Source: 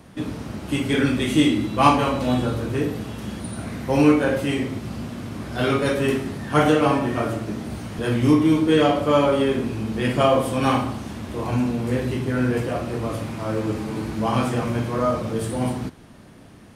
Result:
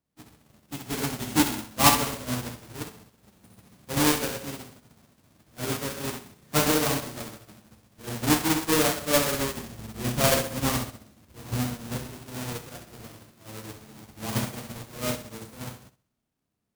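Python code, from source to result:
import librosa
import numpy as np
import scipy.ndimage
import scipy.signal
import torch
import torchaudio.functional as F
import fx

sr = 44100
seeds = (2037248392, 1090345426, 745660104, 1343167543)

y = fx.halfwave_hold(x, sr)
y = fx.low_shelf(y, sr, hz=130.0, db=6.0, at=(9.34, 12.07))
y = fx.echo_feedback(y, sr, ms=65, feedback_pct=57, wet_db=-6)
y = np.clip(10.0 ** (7.0 / 20.0) * y, -1.0, 1.0) / 10.0 ** (7.0 / 20.0)
y = fx.high_shelf(y, sr, hz=4500.0, db=10.5)
y = fx.upward_expand(y, sr, threshold_db=-31.0, expansion=2.5)
y = y * librosa.db_to_amplitude(-6.0)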